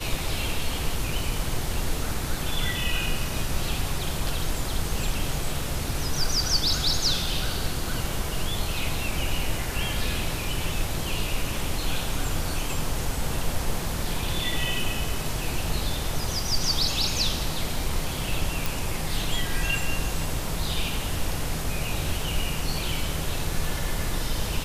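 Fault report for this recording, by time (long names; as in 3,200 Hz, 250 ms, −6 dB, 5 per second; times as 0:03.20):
0:18.66: click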